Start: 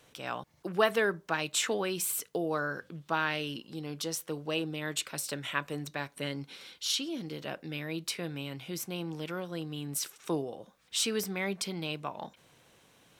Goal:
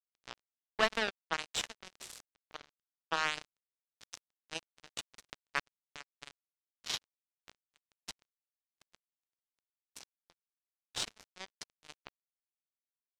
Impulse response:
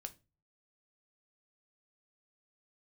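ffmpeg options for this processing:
-af "highpass=f=810:p=1,aecho=1:1:99:0.282,acrusher=bits=3:mix=0:aa=0.5,lowpass=6k,deesser=0.6"

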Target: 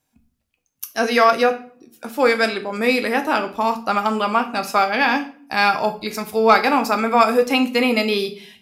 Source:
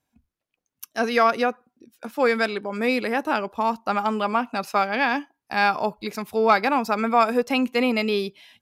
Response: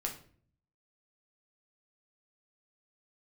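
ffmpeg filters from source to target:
-filter_complex "[0:a]asplit=2[a][b];[1:a]atrim=start_sample=2205,highshelf=f=3.1k:g=9.5[c];[b][c]afir=irnorm=-1:irlink=0,volume=0dB[d];[a][d]amix=inputs=2:normalize=0,volume=-2.5dB"

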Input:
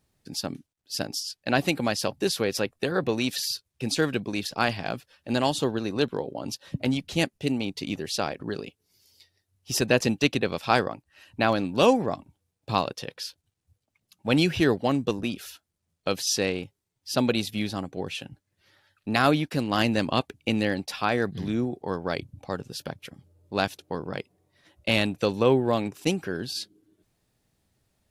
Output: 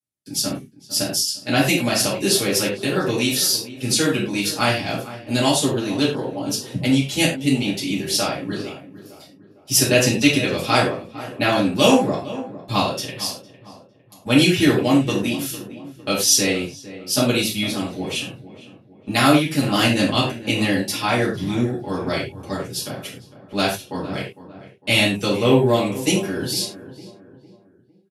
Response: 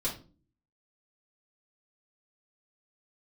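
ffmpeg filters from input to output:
-filter_complex "[0:a]highpass=100,aemphasis=mode=production:type=75kf,agate=range=-27dB:threshold=-50dB:ratio=16:detection=peak,asplit=2[a][b];[b]adelay=455,lowpass=f=1.6k:p=1,volume=-14.5dB,asplit=2[c][d];[d]adelay=455,lowpass=f=1.6k:p=1,volume=0.44,asplit=2[e][f];[f]adelay=455,lowpass=f=1.6k:p=1,volume=0.44,asplit=2[g][h];[h]adelay=455,lowpass=f=1.6k:p=1,volume=0.44[i];[a][c][e][g][i]amix=inputs=5:normalize=0[j];[1:a]atrim=start_sample=2205,atrim=end_sample=3087,asetrate=25137,aresample=44100[k];[j][k]afir=irnorm=-1:irlink=0,volume=-5dB"

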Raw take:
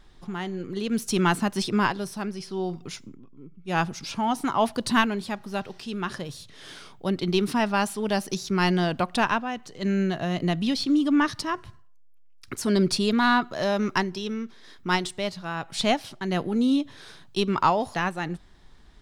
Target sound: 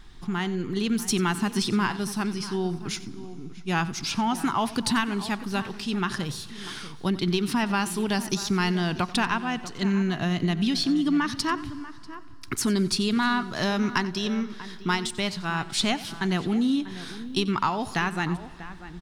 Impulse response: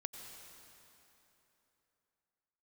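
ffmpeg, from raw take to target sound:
-filter_complex "[0:a]equalizer=f=560:w=2:g=-11.5,acompressor=threshold=-28dB:ratio=4,asplit=2[a][b];[b]adelay=641.4,volume=-14dB,highshelf=f=4k:g=-14.4[c];[a][c]amix=inputs=2:normalize=0,asplit=2[d][e];[1:a]atrim=start_sample=2205,adelay=91[f];[e][f]afir=irnorm=-1:irlink=0,volume=-14dB[g];[d][g]amix=inputs=2:normalize=0,volume=6dB"

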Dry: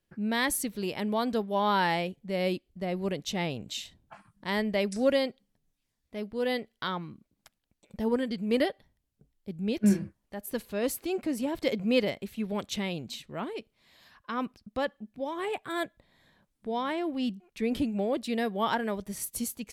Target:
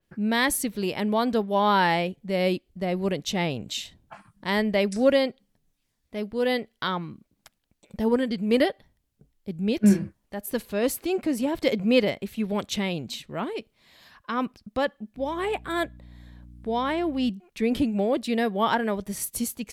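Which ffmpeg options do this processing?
-filter_complex "[0:a]asettb=1/sr,asplit=3[a][b][c];[a]atrim=end=15.174[d];[b]atrim=start=15.17:end=17.3,asetpts=PTS-STARTPTS,afade=t=in:d=0.004:c=qsin,afade=t=out:st=2.126:d=0.004:c=qsin,aeval=exprs='val(0)+0.00316*(sin(2*PI*60*n/s)+sin(2*PI*2*60*n/s)/2+sin(2*PI*3*60*n/s)/3+sin(2*PI*4*60*n/s)/4+sin(2*PI*5*60*n/s)/5)':c=same[e];[c]atrim=start=17.296[f];[d][e]acrossfade=d=0.004:c1=hsin:c2=qsin[g];[g][f]acrossfade=d=0.004:c1=qsin:c2=hsin,adynamicequalizer=threshold=0.00562:dfrequency=3700:dqfactor=0.7:tfrequency=3700:tqfactor=0.7:attack=5:release=100:ratio=0.375:range=2:mode=cutabove:tftype=highshelf,volume=5dB"

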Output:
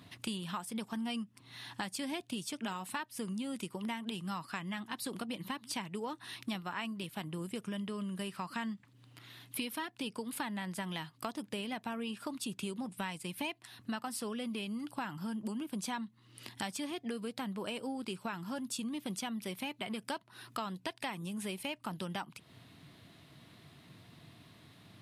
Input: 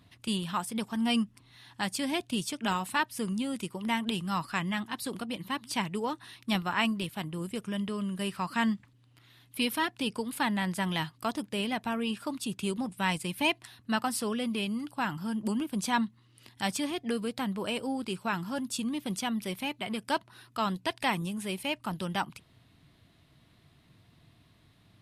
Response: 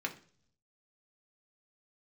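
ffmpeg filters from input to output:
-af "highpass=120,acompressor=threshold=-43dB:ratio=6,volume=6dB"

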